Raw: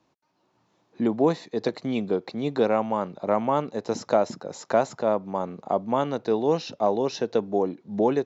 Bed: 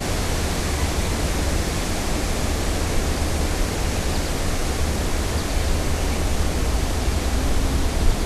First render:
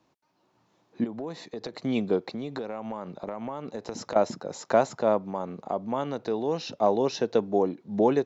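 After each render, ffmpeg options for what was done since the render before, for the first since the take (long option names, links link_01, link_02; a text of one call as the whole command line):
ffmpeg -i in.wav -filter_complex "[0:a]asettb=1/sr,asplit=3[link_01][link_02][link_03];[link_01]atrim=end=1.044[link_04];[link_02]atrim=start=1.04:end=1.82,asetpts=PTS-STARTPTS,afade=type=in:duration=0.004:curve=qsin,afade=type=out:start_time=0.776:duration=0.004:curve=qsin,acompressor=threshold=-32dB:ratio=6:attack=3.2:release=140:knee=1:detection=peak[link_05];[link_03]atrim=start=1.816[link_06];[link_04][link_05]acrossfade=duration=0.004:curve1=hsin:curve2=qsin[link_07];[link_07][link_06]acrossfade=duration=0.004:curve1=qsin:curve2=hsin,asettb=1/sr,asplit=3[link_08][link_09][link_10];[link_08]atrim=end=2.334[link_11];[link_09]atrim=start=2.33:end=4.16,asetpts=PTS-STARTPTS,afade=type=in:duration=0.004:curve=qsin,afade=type=out:start_time=1.826:duration=0.004:curve=qsin,acompressor=threshold=-29dB:ratio=16:attack=3.2:release=140:knee=1:detection=peak[link_12];[link_10]atrim=start=4.156[link_13];[link_11][link_12]acrossfade=duration=0.004:curve1=hsin:curve2=qsin[link_14];[link_14][link_13]acrossfade=duration=0.004:curve1=qsin:curve2=hsin,asettb=1/sr,asplit=3[link_15][link_16][link_17];[link_15]atrim=end=5.304[link_18];[link_16]atrim=start=5.3:end=6.73,asetpts=PTS-STARTPTS,afade=type=in:duration=0.004:curve=qsin,afade=type=out:start_time=1.426:duration=0.004:curve=qsin,acompressor=threshold=-32dB:ratio=1.5:attack=3.2:release=140:knee=1:detection=peak[link_19];[link_17]atrim=start=6.726[link_20];[link_18][link_19]acrossfade=duration=0.004:curve1=hsin:curve2=qsin[link_21];[link_21][link_20]acrossfade=duration=0.004:curve1=qsin:curve2=hsin" out.wav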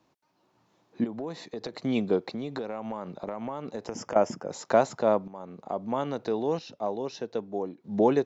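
ffmpeg -i in.wav -filter_complex "[0:a]asettb=1/sr,asplit=3[link_01][link_02][link_03];[link_01]atrim=end=3.874[link_04];[link_02]atrim=start=3.87:end=4.51,asetpts=PTS-STARTPTS,afade=type=in:duration=0.004:curve=qsin,afade=type=out:start_time=0.636:duration=0.004:curve=qsin,asuperstop=centerf=4000:order=4:qfactor=2.9[link_05];[link_03]atrim=start=4.506[link_06];[link_04][link_05]acrossfade=duration=0.004:curve1=hsin:curve2=qsin[link_07];[link_07][link_06]acrossfade=duration=0.004:curve1=qsin:curve2=hsin,asplit=4[link_08][link_09][link_10][link_11];[link_08]atrim=end=5.28,asetpts=PTS-STARTPTS,afade=type=out:start_time=5.276:duration=0.004:curve=hsin:silence=0.211349[link_12];[link_09]atrim=start=5.28:end=6.592,asetpts=PTS-STARTPTS,afade=type=in:duration=0.65:silence=0.211349[link_13];[link_10]atrim=start=6.588:end=7.842,asetpts=PTS-STARTPTS,volume=-8dB[link_14];[link_11]atrim=start=7.838[link_15];[link_12][link_13]concat=n=2:v=0:a=1[link_16];[link_16][link_14]acrossfade=duration=0.004:curve1=hsin:curve2=hsin[link_17];[link_17][link_15]acrossfade=duration=0.004:curve1=hsin:curve2=hsin" out.wav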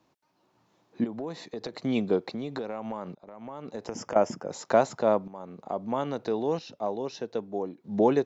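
ffmpeg -i in.wav -filter_complex "[0:a]asplit=2[link_01][link_02];[link_01]atrim=end=3.15,asetpts=PTS-STARTPTS,afade=type=out:start_time=3.146:duration=0.004:curve=hsin:silence=0.0630957[link_03];[link_02]atrim=start=3.15,asetpts=PTS-STARTPTS,afade=type=in:duration=0.71:silence=0.0630957[link_04];[link_03][link_04]concat=n=2:v=0:a=1" out.wav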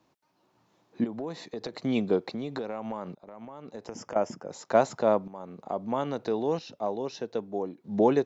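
ffmpeg -i in.wav -filter_complex "[0:a]asplit=3[link_01][link_02][link_03];[link_01]atrim=end=3.452[link_04];[link_02]atrim=start=3.448:end=4.752,asetpts=PTS-STARTPTS,volume=-4dB[link_05];[link_03]atrim=start=4.748[link_06];[link_04][link_05]acrossfade=duration=0.004:curve1=hsin:curve2=hsin[link_07];[link_07][link_06]acrossfade=duration=0.004:curve1=hsin:curve2=hsin" out.wav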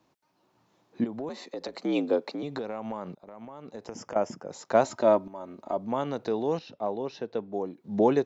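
ffmpeg -i in.wav -filter_complex "[0:a]asettb=1/sr,asplit=3[link_01][link_02][link_03];[link_01]atrim=end=1.294[link_04];[link_02]atrim=start=1.29:end=2.43,asetpts=PTS-STARTPTS,afade=type=in:duration=0.004:curve=qsin,afade=type=out:start_time=1.136:duration=0.004:curve=qsin,afreqshift=65[link_05];[link_03]atrim=start=2.426[link_06];[link_04][link_05]acrossfade=duration=0.004:curve1=hsin:curve2=qsin[link_07];[link_07][link_06]acrossfade=duration=0.004:curve1=qsin:curve2=hsin,asettb=1/sr,asplit=3[link_08][link_09][link_10];[link_08]atrim=end=4.844[link_11];[link_09]atrim=start=4.84:end=5.77,asetpts=PTS-STARTPTS,afade=type=in:duration=0.004:curve=qsin,afade=type=out:start_time=0.926:duration=0.004:curve=qsin,aecho=1:1:3.2:0.64,atrim=end_sample=41013[link_12];[link_10]atrim=start=5.766[link_13];[link_11][link_12]acrossfade=duration=0.004:curve1=hsin:curve2=qsin[link_14];[link_14][link_13]acrossfade=duration=0.004:curve1=qsin:curve2=hsin,asettb=1/sr,asplit=3[link_15][link_16][link_17];[link_15]atrim=end=6.594[link_18];[link_16]atrim=start=6.59:end=7.53,asetpts=PTS-STARTPTS,afade=type=in:duration=0.004:curve=qsin,afade=type=out:start_time=0.936:duration=0.004:curve=qsin,lowpass=4100[link_19];[link_17]atrim=start=7.526[link_20];[link_18][link_19]acrossfade=duration=0.004:curve1=hsin:curve2=qsin[link_21];[link_21][link_20]acrossfade=duration=0.004:curve1=qsin:curve2=hsin" out.wav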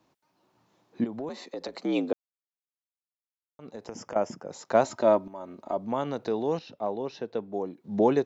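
ffmpeg -i in.wav -filter_complex "[0:a]asplit=3[link_01][link_02][link_03];[link_01]atrim=end=2.13,asetpts=PTS-STARTPTS,afade=type=out:start_time=2.126:duration=0.004:curve=hsin[link_04];[link_02]atrim=start=2.13:end=3.59,asetpts=PTS-STARTPTS,volume=0[link_05];[link_03]atrim=start=3.59,asetpts=PTS-STARTPTS,afade=type=in:duration=0.004:curve=hsin[link_06];[link_04][link_05][link_06]concat=n=3:v=0:a=1" out.wav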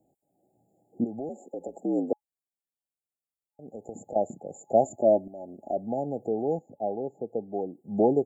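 ffmpeg -i in.wav -af "afftfilt=real='re*(1-between(b*sr/4096,850,6800))':imag='im*(1-between(b*sr/4096,850,6800))':win_size=4096:overlap=0.75,equalizer=frequency=1100:width_type=o:width=0.64:gain=6.5" out.wav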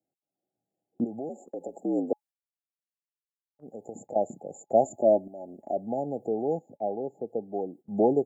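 ffmpeg -i in.wav -af "highpass=frequency=120:poles=1,agate=range=-18dB:threshold=-48dB:ratio=16:detection=peak" out.wav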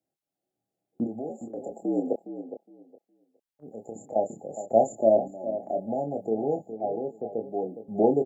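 ffmpeg -i in.wav -filter_complex "[0:a]asplit=2[link_01][link_02];[link_02]adelay=27,volume=-6dB[link_03];[link_01][link_03]amix=inputs=2:normalize=0,asplit=2[link_04][link_05];[link_05]adelay=413,lowpass=frequency=2100:poles=1,volume=-11dB,asplit=2[link_06][link_07];[link_07]adelay=413,lowpass=frequency=2100:poles=1,volume=0.19,asplit=2[link_08][link_09];[link_09]adelay=413,lowpass=frequency=2100:poles=1,volume=0.19[link_10];[link_04][link_06][link_08][link_10]amix=inputs=4:normalize=0" out.wav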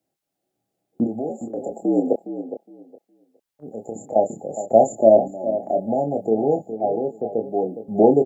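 ffmpeg -i in.wav -af "volume=7.5dB,alimiter=limit=-1dB:level=0:latency=1" out.wav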